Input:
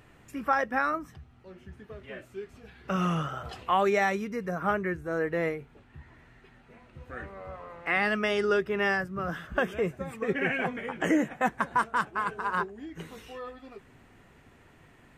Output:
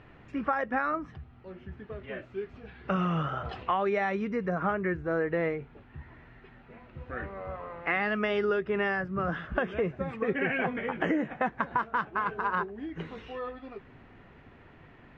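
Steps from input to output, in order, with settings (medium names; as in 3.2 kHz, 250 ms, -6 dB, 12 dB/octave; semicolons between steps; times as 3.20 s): Bessel low-pass 2.8 kHz, order 4; compression, threshold -28 dBFS, peak gain reduction 8 dB; trim +3.5 dB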